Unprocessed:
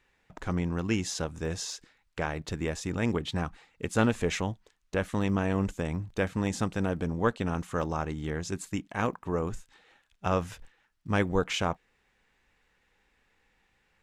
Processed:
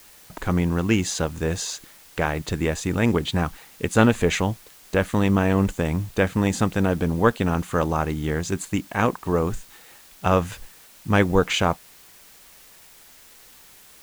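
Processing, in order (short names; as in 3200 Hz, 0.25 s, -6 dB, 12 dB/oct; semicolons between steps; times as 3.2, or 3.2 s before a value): notch 5400 Hz, Q 7.7; in parallel at -6 dB: requantised 8-bit, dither triangular; on the sum: gain +4.5 dB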